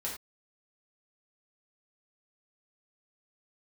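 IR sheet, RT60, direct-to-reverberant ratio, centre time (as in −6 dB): non-exponential decay, −5.0 dB, 30 ms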